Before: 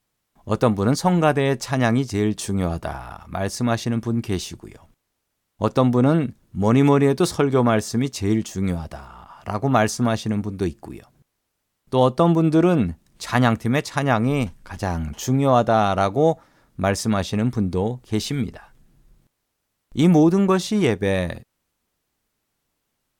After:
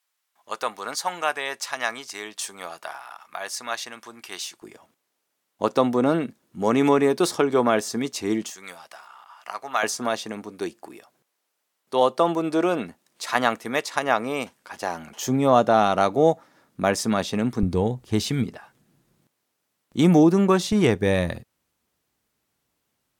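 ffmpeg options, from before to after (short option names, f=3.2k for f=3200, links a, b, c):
-af "asetnsamples=n=441:p=0,asendcmd='4.62 highpass f 290;8.5 highpass f 1100;9.83 highpass f 430;15.27 highpass f 190;17.63 highpass f 54;18.44 highpass f 160;20.72 highpass f 60',highpass=1k"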